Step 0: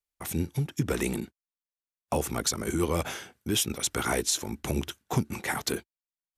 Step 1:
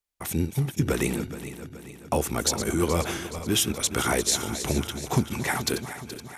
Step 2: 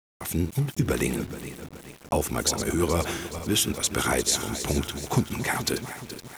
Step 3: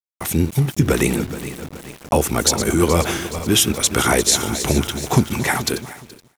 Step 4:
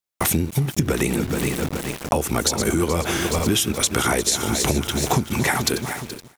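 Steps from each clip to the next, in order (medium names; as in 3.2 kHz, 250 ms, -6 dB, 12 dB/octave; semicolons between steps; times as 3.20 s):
backward echo that repeats 212 ms, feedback 71%, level -11 dB; trim +3 dB
small samples zeroed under -41 dBFS
fade out at the end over 0.94 s; trim +8 dB
compression 10:1, threshold -25 dBFS, peak gain reduction 16 dB; trim +8 dB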